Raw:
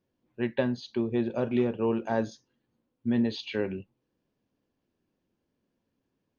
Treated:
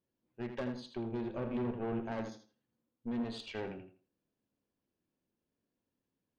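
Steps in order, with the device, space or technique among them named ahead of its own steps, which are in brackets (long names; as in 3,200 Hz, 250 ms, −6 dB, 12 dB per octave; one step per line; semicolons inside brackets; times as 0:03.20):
rockabilly slapback (tube saturation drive 27 dB, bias 0.65; tape delay 81 ms, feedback 26%, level −6 dB, low-pass 4,500 Hz)
0:01.35–0:02.12: bass and treble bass +4 dB, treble −11 dB
level −5.5 dB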